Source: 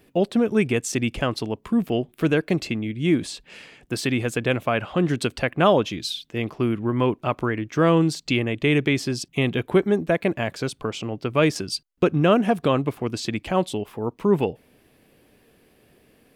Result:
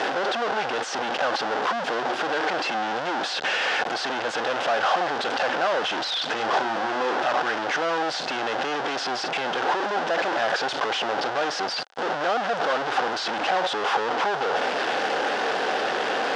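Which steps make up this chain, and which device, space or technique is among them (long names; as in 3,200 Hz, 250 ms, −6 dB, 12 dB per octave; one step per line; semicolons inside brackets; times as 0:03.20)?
home computer beeper (sign of each sample alone; loudspeaker in its box 510–4,800 Hz, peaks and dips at 520 Hz +4 dB, 780 Hz +10 dB, 1,500 Hz +7 dB, 2,300 Hz −5 dB, 4,200 Hz −4 dB)
0:06.36–0:07.14: double-tracking delay 36 ms −6 dB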